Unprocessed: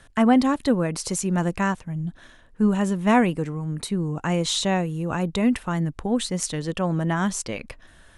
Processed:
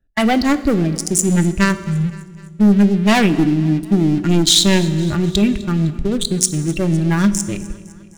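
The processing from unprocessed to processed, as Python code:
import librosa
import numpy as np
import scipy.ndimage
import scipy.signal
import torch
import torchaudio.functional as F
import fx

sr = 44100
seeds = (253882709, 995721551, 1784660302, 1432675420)

p1 = fx.wiener(x, sr, points=41)
p2 = fx.peak_eq(p1, sr, hz=290.0, db=11.0, octaves=0.41, at=(3.3, 4.83))
p3 = fx.level_steps(p2, sr, step_db=11)
p4 = p2 + (p3 * 10.0 ** (-2.0 / 20.0))
p5 = fx.noise_reduce_blind(p4, sr, reduce_db=12)
p6 = fx.leveller(p5, sr, passes=3)
p7 = fx.graphic_eq(p6, sr, hz=(125, 500, 1000), db=(-11, -8, -9))
p8 = fx.echo_feedback(p7, sr, ms=255, feedback_pct=58, wet_db=-20.5)
p9 = fx.rev_fdn(p8, sr, rt60_s=1.3, lf_ratio=1.55, hf_ratio=0.95, size_ms=15.0, drr_db=12.5)
y = p9 * 10.0 ** (4.0 / 20.0)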